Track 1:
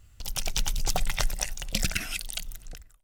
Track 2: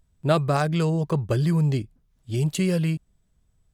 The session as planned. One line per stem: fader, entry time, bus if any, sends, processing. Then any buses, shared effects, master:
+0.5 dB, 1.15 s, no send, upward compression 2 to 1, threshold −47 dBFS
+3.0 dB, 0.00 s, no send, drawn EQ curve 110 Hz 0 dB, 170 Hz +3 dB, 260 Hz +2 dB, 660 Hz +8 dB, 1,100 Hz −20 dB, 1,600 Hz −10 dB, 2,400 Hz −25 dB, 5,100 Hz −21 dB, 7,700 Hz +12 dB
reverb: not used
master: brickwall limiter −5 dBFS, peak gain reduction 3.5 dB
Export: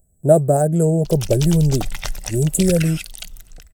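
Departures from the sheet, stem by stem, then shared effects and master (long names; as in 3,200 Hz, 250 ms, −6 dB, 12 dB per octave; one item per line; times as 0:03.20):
stem 1: entry 1.15 s → 0.85 s
master: missing brickwall limiter −5 dBFS, peak gain reduction 3.5 dB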